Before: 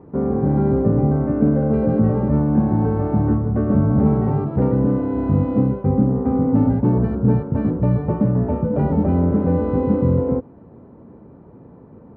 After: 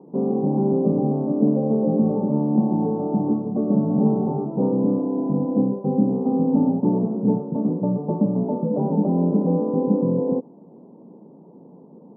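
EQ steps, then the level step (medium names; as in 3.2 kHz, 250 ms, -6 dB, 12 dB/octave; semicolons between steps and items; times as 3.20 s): elliptic band-pass 170–940 Hz, stop band 40 dB; distance through air 430 m; 0.0 dB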